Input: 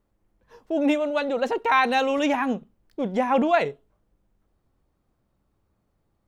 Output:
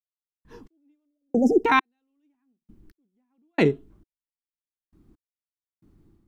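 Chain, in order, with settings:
time-frequency box erased 0:01.06–0:01.64, 810–4,900 Hz
gate pattern "..x...xx.." 67 BPM −60 dB
automatic gain control gain up to 8.5 dB
low shelf with overshoot 430 Hz +8.5 dB, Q 3
level −4 dB

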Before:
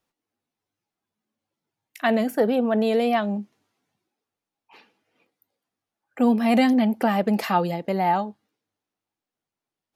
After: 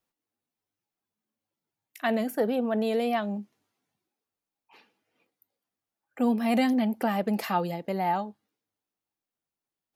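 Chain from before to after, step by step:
high-shelf EQ 11,000 Hz +8 dB
level −5.5 dB

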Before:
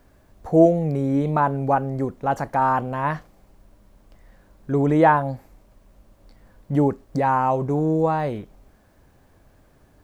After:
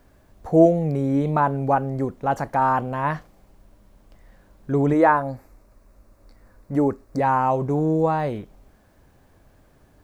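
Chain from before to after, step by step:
0:04.93–0:07.20: thirty-one-band graphic EQ 160 Hz −12 dB, 800 Hz −3 dB, 1,250 Hz +3 dB, 3,150 Hz −12 dB

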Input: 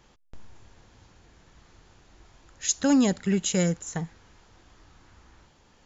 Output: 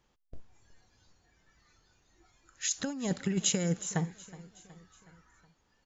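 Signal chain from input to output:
noise reduction from a noise print of the clip's start 14 dB
compressor whose output falls as the input rises −25 dBFS, ratio −0.5
repeating echo 369 ms, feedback 54%, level −19 dB
level −3.5 dB

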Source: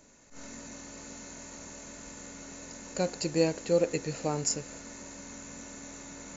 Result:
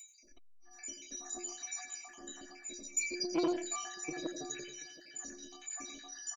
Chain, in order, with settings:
time-frequency cells dropped at random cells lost 78%
graphic EQ with 15 bands 100 Hz −9 dB, 250 Hz +12 dB, 630 Hz +8 dB, 2,500 Hz +5 dB
upward compression, threshold −59 dBFS
high-shelf EQ 2,400 Hz +11.5 dB
stiff-string resonator 350 Hz, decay 0.37 s, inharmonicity 0.03
single-tap delay 730 ms −20.5 dB
transient designer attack +1 dB, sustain +6 dB
convolution reverb RT60 0.35 s, pre-delay 77 ms, DRR 7 dB
saturating transformer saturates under 540 Hz
level +13 dB

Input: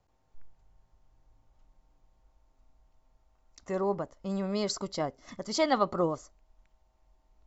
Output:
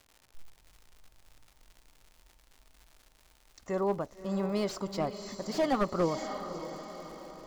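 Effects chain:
surface crackle 140 per second −42 dBFS
feedback delay with all-pass diffusion 578 ms, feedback 50%, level −11 dB
slew-rate limiting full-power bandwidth 49 Hz

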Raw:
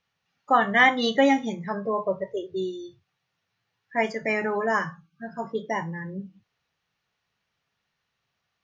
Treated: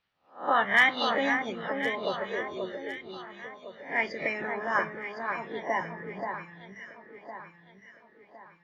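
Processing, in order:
peak hold with a rise ahead of every peak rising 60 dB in 0.35 s
low-pass filter 4,800 Hz 24 dB per octave
harmonic and percussive parts rebalanced harmonic −13 dB
hard clipping −13.5 dBFS, distortion −31 dB
on a send: delay that swaps between a low-pass and a high-pass 530 ms, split 1,800 Hz, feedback 63%, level −5 dB
on the sum: level +1.5 dB

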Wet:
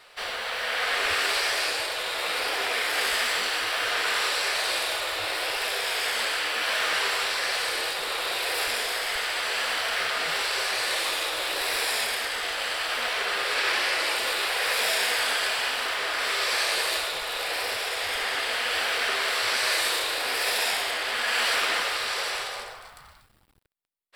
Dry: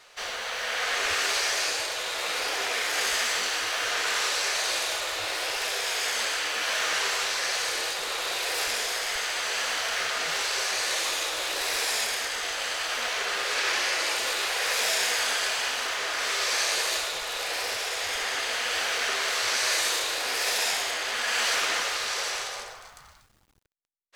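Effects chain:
parametric band 6,400 Hz −14 dB 0.3 octaves
level +2 dB

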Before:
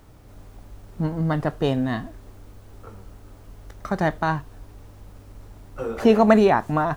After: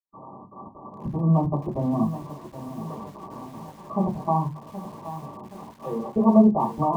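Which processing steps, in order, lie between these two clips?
spike at every zero crossing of −12.5 dBFS
high-pass filter 160 Hz 24 dB per octave
in parallel at +2 dB: brickwall limiter −12.5 dBFS, peak gain reduction 12 dB
on the sum: automatic gain control gain up to 12 dB
gate pattern ".xxxx.xx.xxxx" 194 BPM −60 dB
linear-phase brick-wall low-pass 1,200 Hz
convolution reverb RT60 0.25 s, pre-delay 47 ms
feedback echo at a low word length 773 ms, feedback 55%, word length 7 bits, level −12 dB

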